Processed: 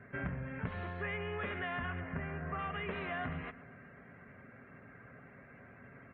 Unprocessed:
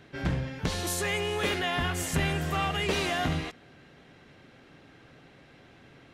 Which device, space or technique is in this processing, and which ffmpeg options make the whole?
bass amplifier: -filter_complex "[0:a]acompressor=threshold=-36dB:ratio=5,highpass=65,equalizer=f=74:t=q:w=4:g=-5,equalizer=f=150:t=q:w=4:g=-6,equalizer=f=340:t=q:w=4:g=-7,equalizer=f=490:t=q:w=4:g=-5,equalizer=f=820:t=q:w=4:g=-8,lowpass=f=2.1k:w=0.5412,lowpass=f=2.1k:w=1.3066,asettb=1/sr,asplit=3[a][b][c];[a]atrim=end=2.004[d];[b]atrim=start=2:end=2.59,asetpts=PTS-STARTPTS,afade=t=in:d=0.004:c=qsin,afade=t=out:st=0.586:d=0.004:c=qsin,lowpass=2k[e];[c]atrim=start=2.586[f];[d][e]acrossfade=d=0.004:c1=hsin:c2=qsin[g];[g][f]acrossfade=d=0.004:c1=qsin:c2=hsin,equalizer=f=310:w=6.6:g=-10.5,aecho=1:1:125|250|375|500|625:0.141|0.0763|0.0412|0.0222|0.012,afftdn=nr=16:nf=-66,volume=3.5dB"

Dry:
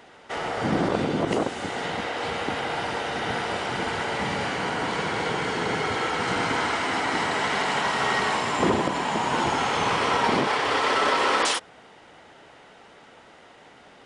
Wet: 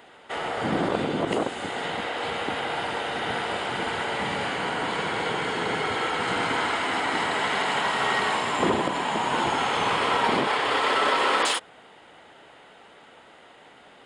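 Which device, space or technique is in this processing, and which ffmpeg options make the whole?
exciter from parts: -filter_complex "[0:a]lowshelf=f=200:g=-5.5,bandreject=f=5.8k:w=7.1,asplit=2[a][b];[b]highpass=f=3.1k:w=0.5412,highpass=f=3.1k:w=1.3066,asoftclip=type=tanh:threshold=-28.5dB,highpass=f=2.9k:w=0.5412,highpass=f=2.9k:w=1.3066,volume=-9dB[c];[a][c]amix=inputs=2:normalize=0"

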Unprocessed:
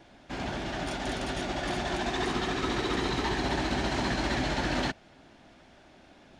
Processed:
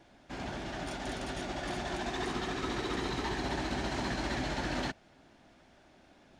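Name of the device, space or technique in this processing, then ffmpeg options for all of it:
exciter from parts: -filter_complex "[0:a]asplit=2[a][b];[b]highpass=2.2k,asoftclip=type=tanh:threshold=-32dB,highpass=3.2k,volume=-12dB[c];[a][c]amix=inputs=2:normalize=0,volume=-5dB"

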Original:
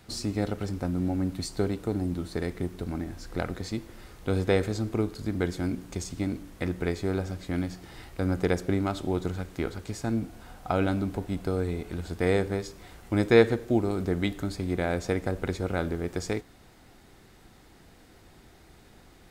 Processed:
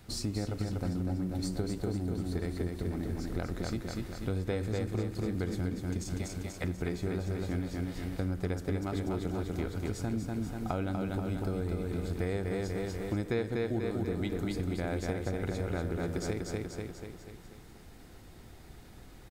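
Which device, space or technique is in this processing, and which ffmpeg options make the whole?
ASMR close-microphone chain: -filter_complex "[0:a]asettb=1/sr,asplit=3[a][b][c];[a]atrim=end=6.184[d];[b]atrim=start=6.18:end=6.64,asetpts=PTS-STARTPTS,afade=t=in:d=0.004:c=qsin,afade=t=out:st=0.456:d=0.004:c=qsin,highpass=f=480:w=0.5412,highpass=f=480:w=1.3066[e];[c]atrim=start=6.636[f];[d][e]acrossfade=d=0.004:c1=hsin:c2=qsin[g];[g][f]acrossfade=d=0.004:c1=qsin:c2=hsin,lowshelf=f=180:g=6.5,aecho=1:1:243|486|729|972|1215|1458|1701:0.631|0.334|0.177|0.0939|0.0498|0.0264|0.014,acompressor=threshold=-27dB:ratio=4,highshelf=f=10k:g=4.5,volume=-3dB"

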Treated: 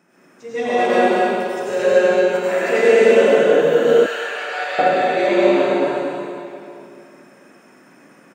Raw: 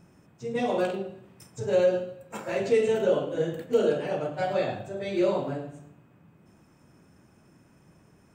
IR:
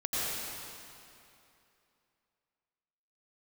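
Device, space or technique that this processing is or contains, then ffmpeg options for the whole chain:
stadium PA: -filter_complex "[0:a]highpass=f=220:w=0.5412,highpass=f=220:w=1.3066,equalizer=f=1.8k:t=o:w=1.1:g=7.5,aecho=1:1:186.6|230.3:0.282|0.708[a];[1:a]atrim=start_sample=2205[b];[a][b]afir=irnorm=-1:irlink=0,asettb=1/sr,asplit=3[c][d][e];[c]atrim=end=4.064[f];[d]atrim=start=4.06:end=4.79,asetpts=PTS-STARTPTS,afade=t=in:d=0.004:c=qsin,afade=t=out:st=0.726:d=0.004:c=qsin,highpass=1.2k[g];[e]atrim=start=4.786[h];[f][g]acrossfade=d=0.004:c1=hsin:c2=qsin[i];[i][h]acrossfade=d=0.004:c1=qsin:c2=hsin,volume=1dB"

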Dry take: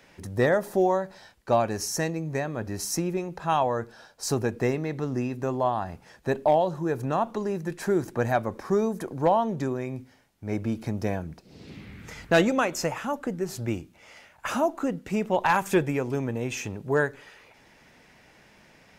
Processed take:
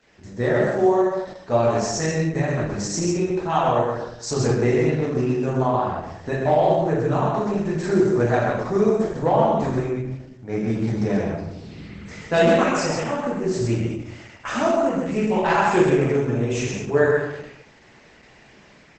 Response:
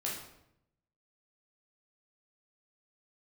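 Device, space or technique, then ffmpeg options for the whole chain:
speakerphone in a meeting room: -filter_complex "[0:a]asplit=3[a][b][c];[a]afade=t=out:st=2.06:d=0.02[d];[b]equalizer=f=65:t=o:w=1:g=5.5,afade=t=in:st=2.06:d=0.02,afade=t=out:st=2.7:d=0.02[e];[c]afade=t=in:st=2.7:d=0.02[f];[d][e][f]amix=inputs=3:normalize=0,aecho=1:1:129:0.631[g];[1:a]atrim=start_sample=2205[h];[g][h]afir=irnorm=-1:irlink=0,asplit=2[i][j];[j]adelay=180,highpass=300,lowpass=3.4k,asoftclip=type=hard:threshold=-14.5dB,volume=-22dB[k];[i][k]amix=inputs=2:normalize=0,dynaudnorm=f=290:g=5:m=5.5dB,volume=-2.5dB" -ar 48000 -c:a libopus -b:a 12k

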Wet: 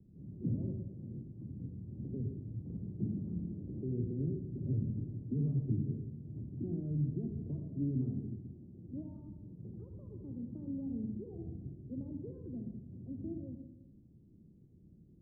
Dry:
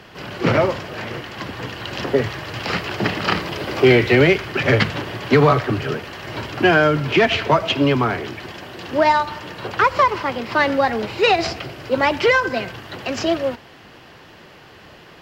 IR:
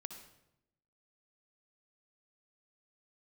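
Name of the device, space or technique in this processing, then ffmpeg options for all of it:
club heard from the street: -filter_complex "[0:a]alimiter=limit=-10dB:level=0:latency=1:release=66,lowpass=f=250:w=0.5412,lowpass=f=250:w=1.3066[a];[1:a]atrim=start_sample=2205[b];[a][b]afir=irnorm=-1:irlink=0,volume=-5.5dB"

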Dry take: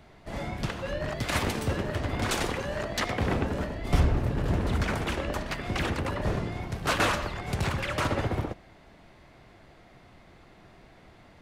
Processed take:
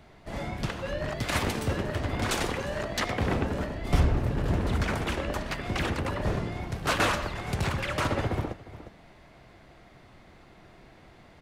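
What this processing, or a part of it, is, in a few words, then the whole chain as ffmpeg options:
ducked delay: -filter_complex "[0:a]asplit=3[a][b][c];[b]adelay=355,volume=-8dB[d];[c]apad=whole_len=519269[e];[d][e]sidechaincompress=threshold=-43dB:ratio=5:attack=6.7:release=390[f];[a][f]amix=inputs=2:normalize=0"

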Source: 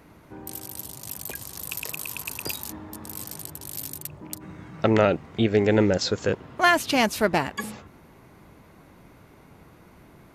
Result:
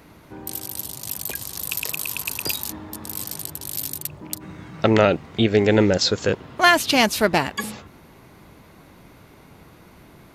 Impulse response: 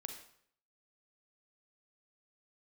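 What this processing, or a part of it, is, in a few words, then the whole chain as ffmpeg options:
presence and air boost: -af "equalizer=f=3.9k:t=o:w=1.2:g=4.5,highshelf=f=10k:g=4.5,volume=3dB"

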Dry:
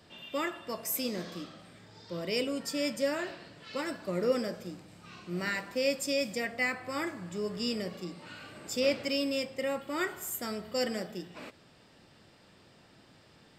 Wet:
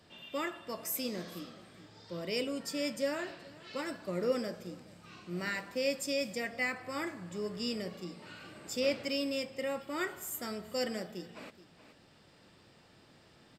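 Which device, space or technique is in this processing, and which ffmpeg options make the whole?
ducked delay: -filter_complex "[0:a]asplit=3[a][b][c];[b]adelay=424,volume=-4dB[d];[c]apad=whole_len=617779[e];[d][e]sidechaincompress=threshold=-51dB:ratio=8:attack=16:release=875[f];[a][f]amix=inputs=2:normalize=0,volume=-3dB"

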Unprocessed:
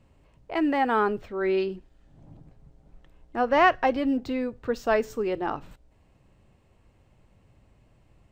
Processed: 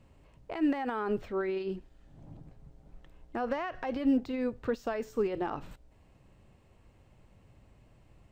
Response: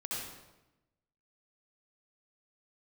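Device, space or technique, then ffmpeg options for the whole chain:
de-esser from a sidechain: -filter_complex "[0:a]asplit=2[a][b];[b]highpass=4.2k,apad=whole_len=366810[c];[a][c]sidechaincompress=threshold=-56dB:ratio=4:attack=4.2:release=52"

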